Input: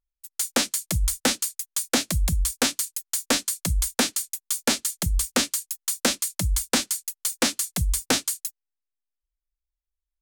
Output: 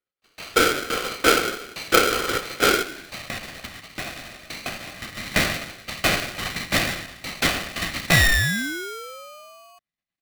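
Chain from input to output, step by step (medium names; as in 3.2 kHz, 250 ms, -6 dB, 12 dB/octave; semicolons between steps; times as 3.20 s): spectral sustain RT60 0.90 s; gain riding 0.5 s; LPC vocoder at 8 kHz whisper; 2.82–5.17 s: compression 2.5:1, threshold -35 dBFS, peak gain reduction 13 dB; comb 1.9 ms, depth 80%; 8.11–9.79 s: painted sound fall 200–1100 Hz -24 dBFS; high-pass sweep 400 Hz -> 960 Hz, 2.65–3.25 s; polarity switched at an audio rate 910 Hz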